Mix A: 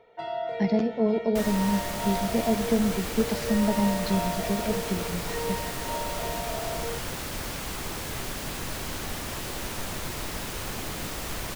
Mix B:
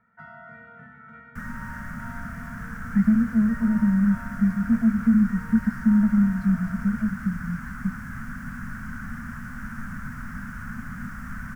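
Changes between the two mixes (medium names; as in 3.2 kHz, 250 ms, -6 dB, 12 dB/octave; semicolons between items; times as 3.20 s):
speech: entry +2.35 s; master: add FFT filter 120 Hz 0 dB, 240 Hz +8 dB, 340 Hz -30 dB, 850 Hz -16 dB, 1.5 kHz +8 dB, 2.6 kHz -20 dB, 3.9 kHz -29 dB, 5.6 kHz -19 dB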